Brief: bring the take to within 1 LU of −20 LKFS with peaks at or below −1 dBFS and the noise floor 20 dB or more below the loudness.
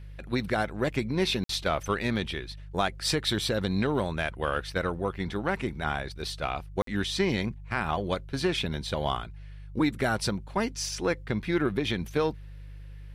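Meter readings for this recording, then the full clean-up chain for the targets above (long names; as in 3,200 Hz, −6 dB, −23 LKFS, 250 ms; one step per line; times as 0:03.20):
number of dropouts 2; longest dropout 53 ms; mains hum 50 Hz; hum harmonics up to 150 Hz; level of the hum −41 dBFS; integrated loudness −29.5 LKFS; sample peak −12.5 dBFS; target loudness −20.0 LKFS
→ repair the gap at 0:01.44/0:06.82, 53 ms
hum removal 50 Hz, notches 3
level +9.5 dB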